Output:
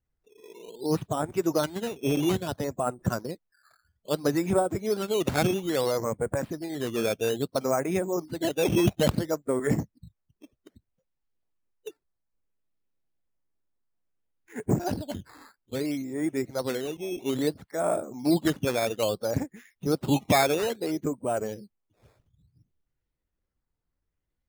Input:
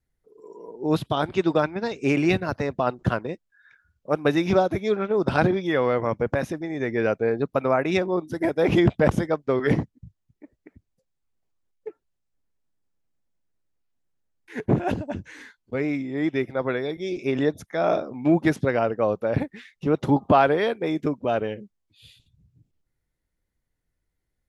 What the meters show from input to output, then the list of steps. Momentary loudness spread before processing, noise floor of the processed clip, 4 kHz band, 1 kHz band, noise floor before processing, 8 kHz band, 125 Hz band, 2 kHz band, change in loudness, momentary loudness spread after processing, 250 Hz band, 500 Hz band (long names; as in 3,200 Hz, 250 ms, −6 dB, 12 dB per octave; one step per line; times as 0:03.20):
12 LU, −82 dBFS, +1.5 dB, −5.5 dB, −79 dBFS, can't be measured, −4.0 dB, −6.5 dB, −4.0 dB, 11 LU, −4.0 dB, −4.5 dB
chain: spectral magnitudes quantised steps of 15 dB
parametric band 4,300 Hz −9.5 dB 1.7 octaves
sample-and-hold swept by an LFO 10×, swing 100% 0.6 Hz
level −3.5 dB